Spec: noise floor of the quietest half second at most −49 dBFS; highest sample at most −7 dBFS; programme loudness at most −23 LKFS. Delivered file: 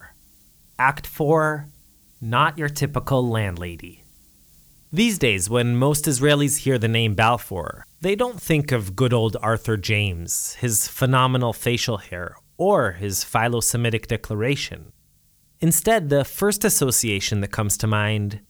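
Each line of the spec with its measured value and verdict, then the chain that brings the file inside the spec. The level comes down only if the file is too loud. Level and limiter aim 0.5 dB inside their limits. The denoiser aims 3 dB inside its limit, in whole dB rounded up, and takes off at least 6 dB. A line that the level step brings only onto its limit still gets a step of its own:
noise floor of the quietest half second −59 dBFS: in spec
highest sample −4.0 dBFS: out of spec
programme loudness −21.0 LKFS: out of spec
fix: level −2.5 dB
brickwall limiter −7.5 dBFS

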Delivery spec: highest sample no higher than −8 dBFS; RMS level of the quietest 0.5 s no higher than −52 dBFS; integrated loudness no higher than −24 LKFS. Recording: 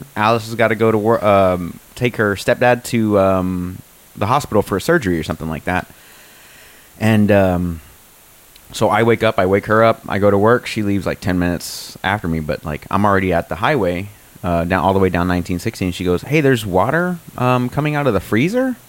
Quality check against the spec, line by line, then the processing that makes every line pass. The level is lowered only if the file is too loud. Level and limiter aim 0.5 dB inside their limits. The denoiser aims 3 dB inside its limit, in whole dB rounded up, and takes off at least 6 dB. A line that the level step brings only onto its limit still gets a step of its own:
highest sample −2.0 dBFS: out of spec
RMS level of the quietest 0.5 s −46 dBFS: out of spec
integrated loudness −16.5 LKFS: out of spec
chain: level −8 dB

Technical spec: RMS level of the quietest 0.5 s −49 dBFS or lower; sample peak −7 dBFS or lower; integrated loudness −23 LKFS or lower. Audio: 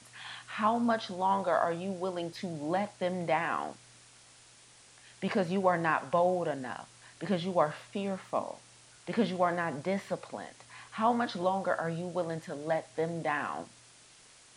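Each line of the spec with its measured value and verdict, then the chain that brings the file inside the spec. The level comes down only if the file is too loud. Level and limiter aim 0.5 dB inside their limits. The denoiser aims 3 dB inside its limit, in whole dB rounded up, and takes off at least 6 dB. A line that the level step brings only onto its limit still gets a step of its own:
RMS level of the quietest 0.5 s −58 dBFS: in spec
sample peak −12.0 dBFS: in spec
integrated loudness −32.0 LKFS: in spec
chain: no processing needed

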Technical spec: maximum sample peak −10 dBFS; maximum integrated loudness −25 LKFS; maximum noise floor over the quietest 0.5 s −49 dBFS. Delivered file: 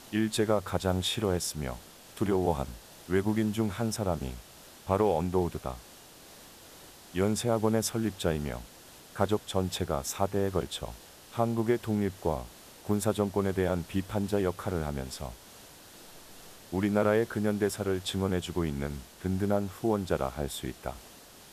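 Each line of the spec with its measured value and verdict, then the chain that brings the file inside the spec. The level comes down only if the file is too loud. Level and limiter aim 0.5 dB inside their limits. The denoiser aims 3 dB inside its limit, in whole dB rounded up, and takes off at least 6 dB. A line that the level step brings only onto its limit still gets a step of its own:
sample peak −10.5 dBFS: in spec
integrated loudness −30.5 LKFS: in spec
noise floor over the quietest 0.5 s −52 dBFS: in spec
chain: no processing needed

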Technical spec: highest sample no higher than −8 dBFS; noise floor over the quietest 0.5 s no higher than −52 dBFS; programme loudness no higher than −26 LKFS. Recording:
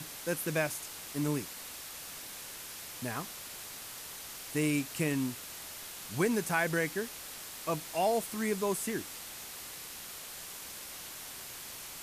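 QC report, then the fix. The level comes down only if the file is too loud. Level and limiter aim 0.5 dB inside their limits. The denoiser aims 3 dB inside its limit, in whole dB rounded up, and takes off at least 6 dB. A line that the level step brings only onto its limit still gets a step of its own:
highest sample −15.5 dBFS: in spec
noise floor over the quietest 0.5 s −45 dBFS: out of spec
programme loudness −35.5 LKFS: in spec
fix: broadband denoise 10 dB, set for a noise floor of −45 dBFS

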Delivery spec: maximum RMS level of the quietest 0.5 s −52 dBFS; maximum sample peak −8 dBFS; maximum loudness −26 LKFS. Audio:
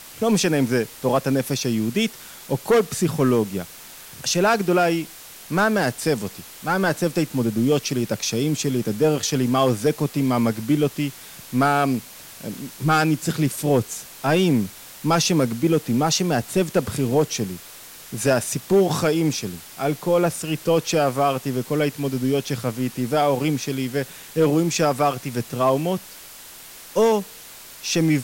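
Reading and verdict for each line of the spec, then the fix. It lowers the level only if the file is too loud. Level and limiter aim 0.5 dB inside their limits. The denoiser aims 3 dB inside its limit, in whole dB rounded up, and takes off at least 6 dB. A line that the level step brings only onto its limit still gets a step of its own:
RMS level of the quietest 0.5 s −42 dBFS: out of spec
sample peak −7.0 dBFS: out of spec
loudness −22.0 LKFS: out of spec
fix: broadband denoise 9 dB, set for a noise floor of −42 dBFS
level −4.5 dB

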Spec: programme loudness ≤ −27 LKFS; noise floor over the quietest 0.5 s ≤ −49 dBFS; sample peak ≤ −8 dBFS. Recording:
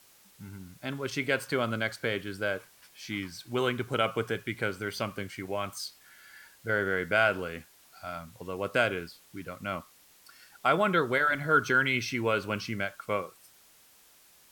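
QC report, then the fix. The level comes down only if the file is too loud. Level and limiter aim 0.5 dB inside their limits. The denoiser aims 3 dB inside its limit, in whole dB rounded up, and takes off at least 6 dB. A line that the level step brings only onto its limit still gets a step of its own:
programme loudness −30.0 LKFS: in spec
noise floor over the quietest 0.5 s −59 dBFS: in spec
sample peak −11.5 dBFS: in spec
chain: no processing needed

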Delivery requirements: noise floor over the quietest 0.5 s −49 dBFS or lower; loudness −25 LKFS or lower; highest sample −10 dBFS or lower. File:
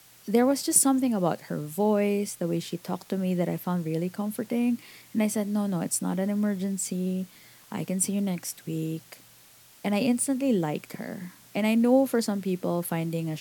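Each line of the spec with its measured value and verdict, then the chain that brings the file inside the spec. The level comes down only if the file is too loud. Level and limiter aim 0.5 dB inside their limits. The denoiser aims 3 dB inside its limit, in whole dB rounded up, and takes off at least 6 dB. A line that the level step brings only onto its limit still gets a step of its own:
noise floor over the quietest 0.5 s −54 dBFS: in spec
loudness −27.0 LKFS: in spec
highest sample −7.5 dBFS: out of spec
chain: brickwall limiter −10.5 dBFS

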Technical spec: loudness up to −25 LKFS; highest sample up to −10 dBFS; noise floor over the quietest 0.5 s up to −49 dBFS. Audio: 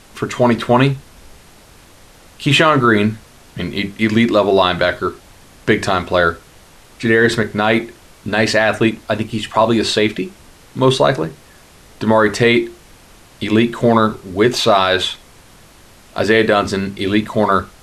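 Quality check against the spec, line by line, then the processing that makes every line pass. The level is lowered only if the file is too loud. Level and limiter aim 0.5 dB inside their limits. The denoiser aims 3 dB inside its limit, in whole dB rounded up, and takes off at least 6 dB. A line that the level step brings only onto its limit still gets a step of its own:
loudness −15.5 LKFS: out of spec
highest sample −1.5 dBFS: out of spec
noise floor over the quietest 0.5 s −44 dBFS: out of spec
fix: level −10 dB

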